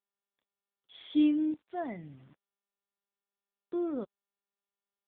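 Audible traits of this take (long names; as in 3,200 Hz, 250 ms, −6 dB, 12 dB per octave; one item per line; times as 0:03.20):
tremolo saw up 0.65 Hz, depth 75%
a quantiser's noise floor 10 bits, dither none
AMR narrowband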